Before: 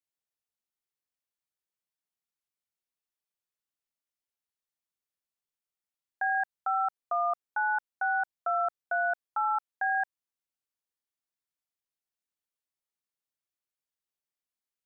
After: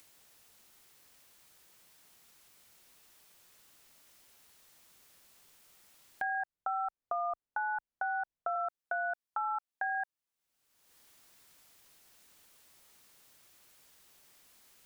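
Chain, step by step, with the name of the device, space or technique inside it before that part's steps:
0:06.42–0:08.56: spectral tilt −2.5 dB per octave
upward and downward compression (upward compression, threshold −39 dBFS; downward compressor 3 to 1, threshold −33 dBFS, peak gain reduction 6.5 dB)

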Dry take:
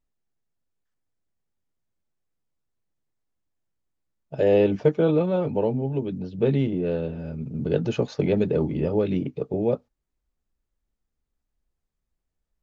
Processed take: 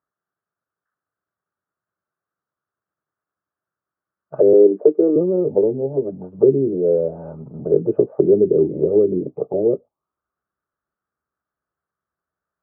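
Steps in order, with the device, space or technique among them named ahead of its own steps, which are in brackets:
0:04.53–0:05.16: high-pass filter 250 Hz 24 dB per octave
envelope filter bass rig (envelope-controlled low-pass 380–1,500 Hz down, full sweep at −19.5 dBFS; loudspeaker in its box 87–2,000 Hz, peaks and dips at 92 Hz −4 dB, 130 Hz −3 dB, 240 Hz −5 dB, 390 Hz +3 dB, 620 Hz +5 dB, 1,200 Hz +8 dB)
level −1.5 dB

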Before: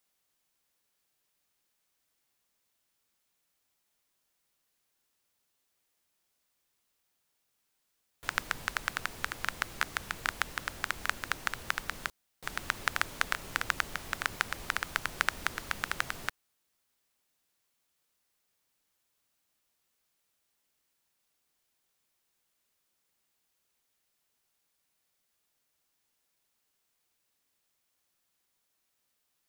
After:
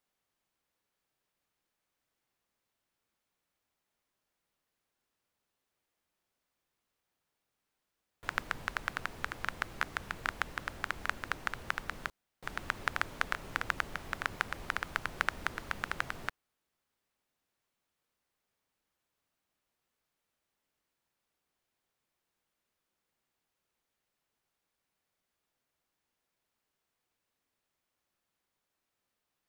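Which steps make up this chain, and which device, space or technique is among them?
through cloth (high-shelf EQ 3,300 Hz −11 dB)

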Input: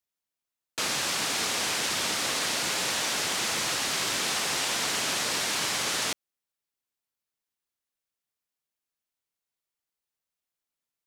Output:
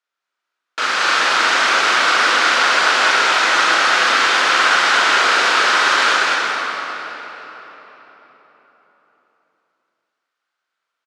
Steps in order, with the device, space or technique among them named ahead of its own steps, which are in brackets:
station announcement (band-pass filter 420–4,100 Hz; parametric band 1,400 Hz +11 dB 0.52 octaves; loudspeakers that aren't time-aligned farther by 14 metres −2 dB, 78 metres −2 dB; convolution reverb RT60 4.3 s, pre-delay 90 ms, DRR −1 dB)
level +6.5 dB

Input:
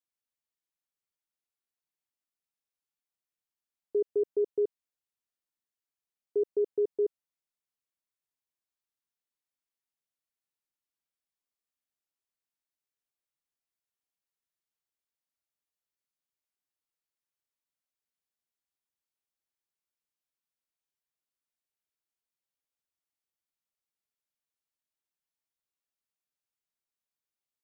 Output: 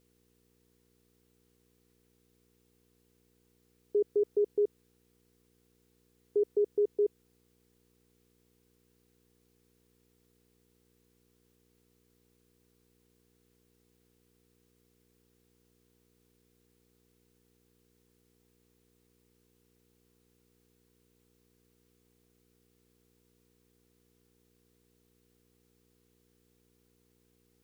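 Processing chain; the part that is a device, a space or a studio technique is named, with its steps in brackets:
video cassette with head-switching buzz (hum with harmonics 60 Hz, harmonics 8, −71 dBFS −1 dB per octave; white noise bed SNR 35 dB)

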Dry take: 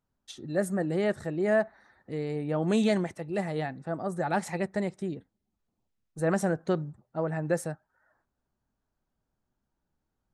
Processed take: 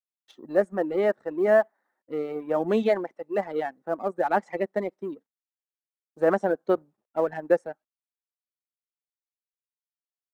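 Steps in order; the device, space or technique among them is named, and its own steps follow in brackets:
notch filter 2,500 Hz, Q 25
noise gate with hold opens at −51 dBFS
phone line with mismatched companding (band-pass filter 350–3,300 Hz; mu-law and A-law mismatch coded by A)
reverb reduction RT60 1.7 s
graphic EQ with 10 bands 250 Hz +7 dB, 500 Hz +5 dB, 1,000 Hz +4 dB, 4,000 Hz −3 dB
level +2.5 dB

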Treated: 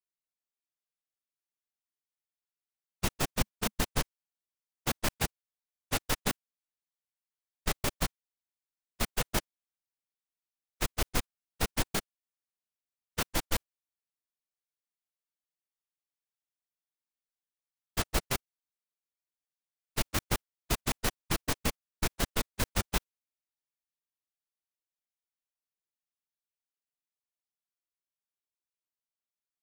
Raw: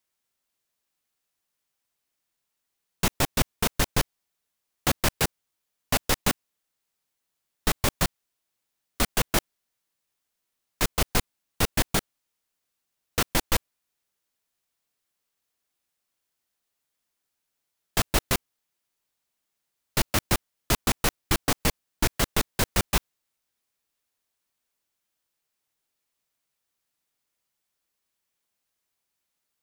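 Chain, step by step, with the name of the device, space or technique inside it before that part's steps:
noise gate −27 dBFS, range −13 dB
octave pedal (pitch-shifted copies added −12 semitones −8 dB)
0:03.27–0:03.83: parametric band 210 Hz +5 dB 0.48 octaves
level −7 dB

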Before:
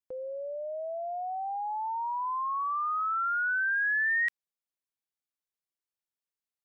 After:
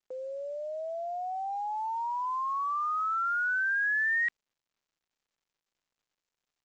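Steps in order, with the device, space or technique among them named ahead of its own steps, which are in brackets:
telephone (band-pass filter 340–3,000 Hz; mu-law 128 kbit/s 16,000 Hz)

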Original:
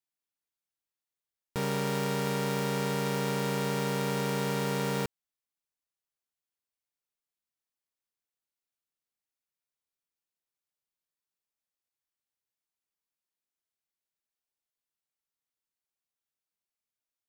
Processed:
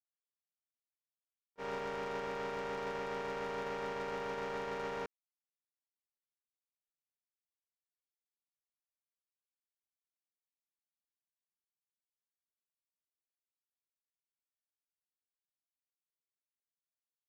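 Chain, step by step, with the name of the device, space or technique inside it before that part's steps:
walkie-talkie (band-pass filter 420–2,400 Hz; hard clipping −30 dBFS, distortion −13 dB; noise gate −32 dBFS, range −54 dB)
level +15.5 dB

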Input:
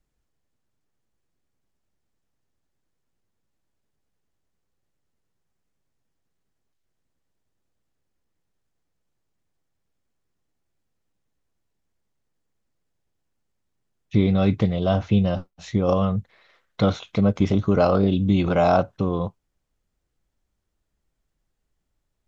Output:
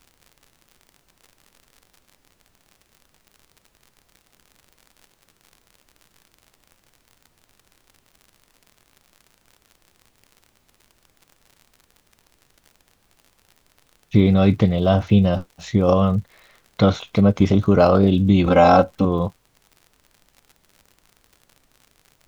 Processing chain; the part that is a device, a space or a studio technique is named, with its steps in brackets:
0:18.46–0:19.05: comb filter 3.8 ms, depth 86%
vinyl LP (surface crackle 67 per second −40 dBFS; pink noise bed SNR 41 dB)
level +4 dB

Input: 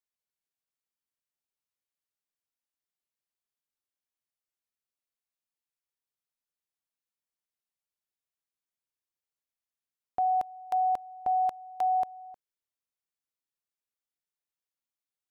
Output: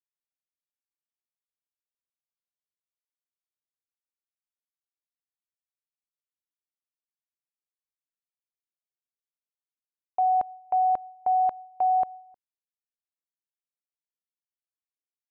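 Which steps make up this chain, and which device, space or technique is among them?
hearing-loss simulation (low-pass filter 1,600 Hz 12 dB per octave; downward expander −38 dBFS)
level +4 dB

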